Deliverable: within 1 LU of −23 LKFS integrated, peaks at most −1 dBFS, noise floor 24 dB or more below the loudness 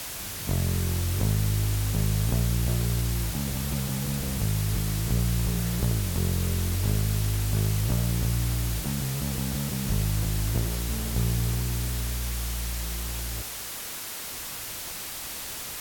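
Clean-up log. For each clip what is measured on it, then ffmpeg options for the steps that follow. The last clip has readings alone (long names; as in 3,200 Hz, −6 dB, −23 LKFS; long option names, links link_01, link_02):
background noise floor −36 dBFS; target noise floor −52 dBFS; integrated loudness −28.0 LKFS; sample peak −13.5 dBFS; target loudness −23.0 LKFS
→ -af "afftdn=noise_reduction=16:noise_floor=-36"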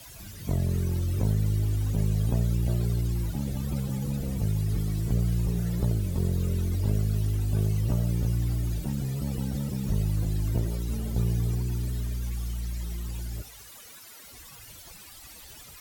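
background noise floor −48 dBFS; target noise floor −53 dBFS
→ -af "afftdn=noise_reduction=6:noise_floor=-48"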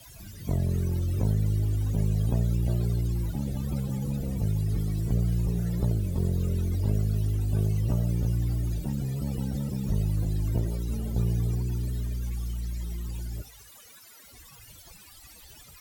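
background noise floor −51 dBFS; target noise floor −53 dBFS
→ -af "afftdn=noise_reduction=6:noise_floor=-51"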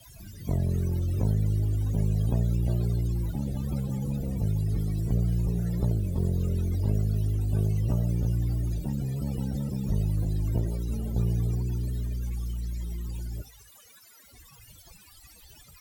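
background noise floor −54 dBFS; integrated loudness −29.0 LKFS; sample peak −14.5 dBFS; target loudness −23.0 LKFS
→ -af "volume=6dB"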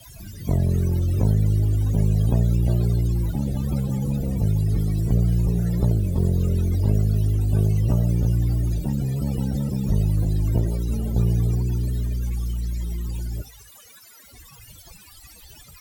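integrated loudness −23.0 LKFS; sample peak −8.5 dBFS; background noise floor −48 dBFS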